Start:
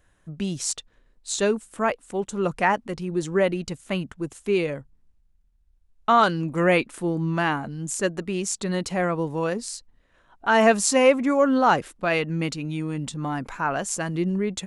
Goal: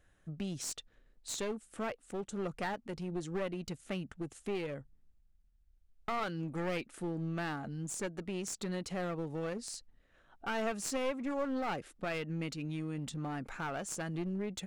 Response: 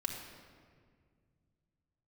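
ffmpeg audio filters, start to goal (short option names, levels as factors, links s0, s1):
-af "highshelf=f=7400:g=-4.5,bandreject=f=1000:w=6.4,acompressor=threshold=0.0224:ratio=2,aeval=exprs='clip(val(0),-1,0.0251)':c=same,volume=0.562"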